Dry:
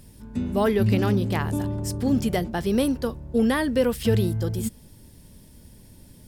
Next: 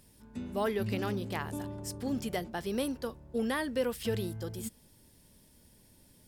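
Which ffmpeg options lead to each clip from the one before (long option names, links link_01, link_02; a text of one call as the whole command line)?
ffmpeg -i in.wav -af "lowshelf=frequency=270:gain=-9,volume=-7dB" out.wav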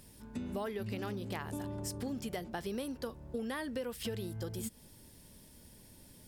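ffmpeg -i in.wav -af "acompressor=threshold=-40dB:ratio=6,volume=4dB" out.wav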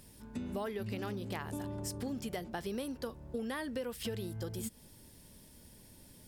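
ffmpeg -i in.wav -af anull out.wav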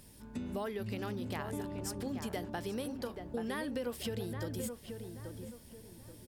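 ffmpeg -i in.wav -filter_complex "[0:a]asplit=2[link_01][link_02];[link_02]adelay=831,lowpass=frequency=1800:poles=1,volume=-6dB,asplit=2[link_03][link_04];[link_04]adelay=831,lowpass=frequency=1800:poles=1,volume=0.36,asplit=2[link_05][link_06];[link_06]adelay=831,lowpass=frequency=1800:poles=1,volume=0.36,asplit=2[link_07][link_08];[link_08]adelay=831,lowpass=frequency=1800:poles=1,volume=0.36[link_09];[link_01][link_03][link_05][link_07][link_09]amix=inputs=5:normalize=0" out.wav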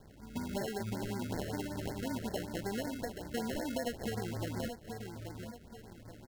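ffmpeg -i in.wav -af "acrusher=samples=37:mix=1:aa=0.000001,afftfilt=real='re*(1-between(b*sr/1024,870*pow(3100/870,0.5+0.5*sin(2*PI*5.3*pts/sr))/1.41,870*pow(3100/870,0.5+0.5*sin(2*PI*5.3*pts/sr))*1.41))':imag='im*(1-between(b*sr/1024,870*pow(3100/870,0.5+0.5*sin(2*PI*5.3*pts/sr))/1.41,870*pow(3100/870,0.5+0.5*sin(2*PI*5.3*pts/sr))*1.41))':win_size=1024:overlap=0.75,volume=1dB" out.wav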